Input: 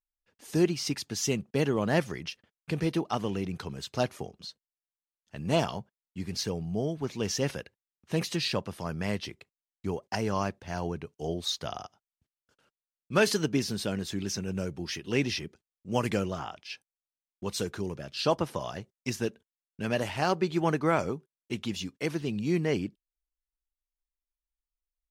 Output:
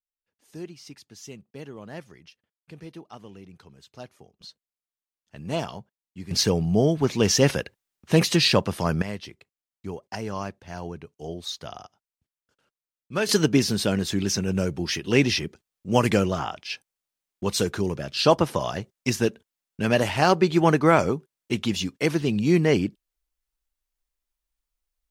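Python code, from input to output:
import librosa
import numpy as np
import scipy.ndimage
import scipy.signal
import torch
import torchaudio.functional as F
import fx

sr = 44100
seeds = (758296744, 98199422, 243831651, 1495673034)

y = fx.gain(x, sr, db=fx.steps((0.0, -13.0), (4.41, -2.0), (6.31, 10.5), (9.02, -2.0), (13.29, 8.0)))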